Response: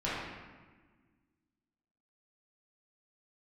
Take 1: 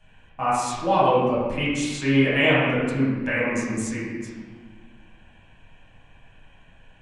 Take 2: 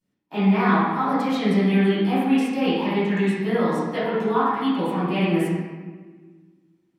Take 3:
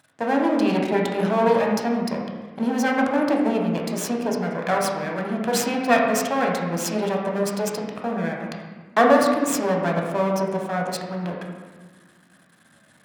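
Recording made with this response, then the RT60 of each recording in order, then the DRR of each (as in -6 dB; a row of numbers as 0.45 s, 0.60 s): 1; 1.4 s, 1.4 s, 1.4 s; -10.5 dB, -15.5 dB, -0.5 dB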